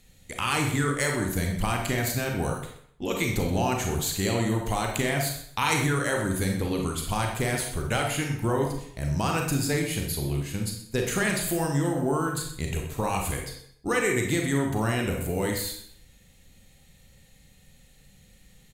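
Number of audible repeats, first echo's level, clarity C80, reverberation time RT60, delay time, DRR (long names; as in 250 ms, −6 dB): 1, −13.0 dB, 7.5 dB, 0.65 s, 127 ms, 0.5 dB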